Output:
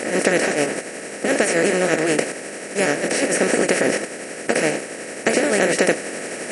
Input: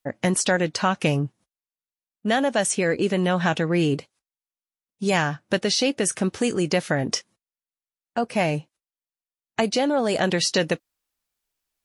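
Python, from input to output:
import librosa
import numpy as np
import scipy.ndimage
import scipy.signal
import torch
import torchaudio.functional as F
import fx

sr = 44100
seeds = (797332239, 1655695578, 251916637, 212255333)

y = fx.bin_compress(x, sr, power=0.2)
y = fx.graphic_eq(y, sr, hz=(125, 250, 500, 1000, 2000, 4000, 8000), db=(-10, 4, 7, -9, 10, -10, 4))
y = fx.stretch_grains(y, sr, factor=0.55, grain_ms=176.0)
y = y * 10.0 ** (-6.0 / 20.0)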